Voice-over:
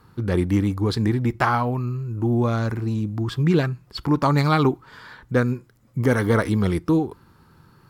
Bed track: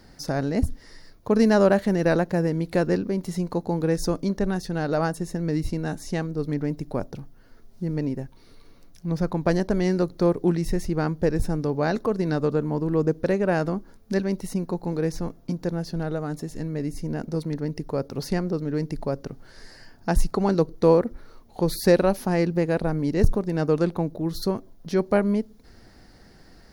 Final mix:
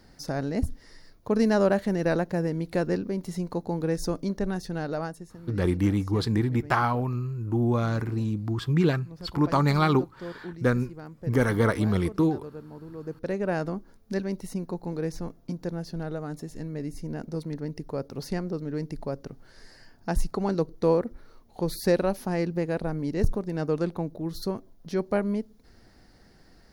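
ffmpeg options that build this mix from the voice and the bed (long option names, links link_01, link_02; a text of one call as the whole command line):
ffmpeg -i stem1.wav -i stem2.wav -filter_complex "[0:a]adelay=5300,volume=-3.5dB[link_01];[1:a]volume=8.5dB,afade=type=out:start_time=4.74:duration=0.59:silence=0.211349,afade=type=in:start_time=13:duration=0.43:silence=0.237137[link_02];[link_01][link_02]amix=inputs=2:normalize=0" out.wav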